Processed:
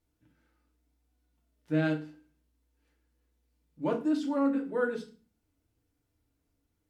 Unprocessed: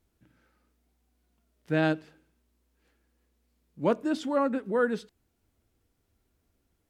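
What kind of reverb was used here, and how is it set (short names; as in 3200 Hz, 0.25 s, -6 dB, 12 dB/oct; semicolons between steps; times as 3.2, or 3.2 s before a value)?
FDN reverb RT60 0.35 s, low-frequency decay 1.5×, high-frequency decay 0.95×, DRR 0.5 dB; gain -8 dB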